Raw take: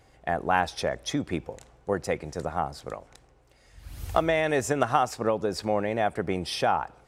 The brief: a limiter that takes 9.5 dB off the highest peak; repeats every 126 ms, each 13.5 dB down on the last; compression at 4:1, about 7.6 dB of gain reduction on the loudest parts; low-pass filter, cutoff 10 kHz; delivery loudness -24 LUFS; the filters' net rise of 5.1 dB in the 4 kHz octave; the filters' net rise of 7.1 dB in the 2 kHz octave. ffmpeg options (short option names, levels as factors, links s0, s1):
-af "lowpass=10000,equalizer=f=2000:t=o:g=8,equalizer=f=4000:t=o:g=4,acompressor=threshold=0.0631:ratio=4,alimiter=limit=0.133:level=0:latency=1,aecho=1:1:126|252:0.211|0.0444,volume=2.37"